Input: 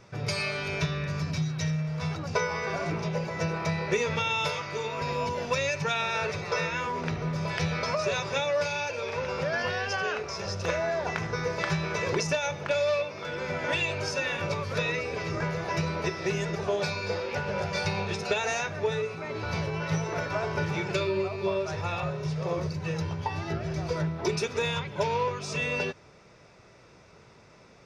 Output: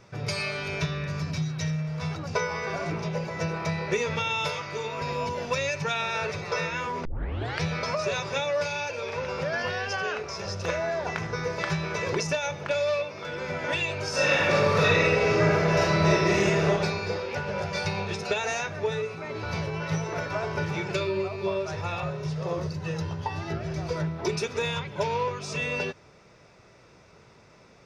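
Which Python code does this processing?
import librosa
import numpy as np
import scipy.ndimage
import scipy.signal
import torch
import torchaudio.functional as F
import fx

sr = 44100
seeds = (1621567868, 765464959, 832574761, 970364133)

y = fx.reverb_throw(x, sr, start_s=14.09, length_s=2.58, rt60_s=1.6, drr_db=-8.0)
y = fx.notch(y, sr, hz=2300.0, q=12.0, at=(22.29, 23.41))
y = fx.edit(y, sr, fx.tape_start(start_s=7.05, length_s=0.57), tone=tone)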